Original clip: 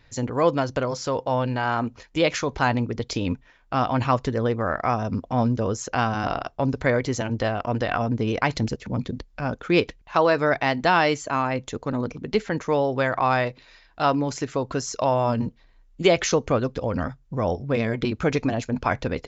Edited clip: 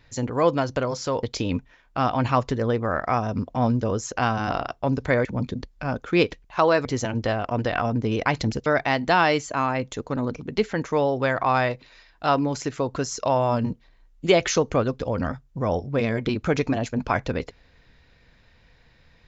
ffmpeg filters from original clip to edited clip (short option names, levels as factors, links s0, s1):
-filter_complex "[0:a]asplit=5[s0][s1][s2][s3][s4];[s0]atrim=end=1.232[s5];[s1]atrim=start=2.988:end=7.012[s6];[s2]atrim=start=8.818:end=10.422[s7];[s3]atrim=start=7.008:end=8.822[s8];[s4]atrim=start=10.418[s9];[s5][s6]acrossfade=d=0.004:c1=hsin:c2=hsin[s10];[s10][s7]acrossfade=d=0.004:c1=hsin:c2=hsin[s11];[s11][s8]acrossfade=d=0.004:c1=hsin:c2=hsin[s12];[s12][s9]acrossfade=d=0.004:c1=hsin:c2=hsin"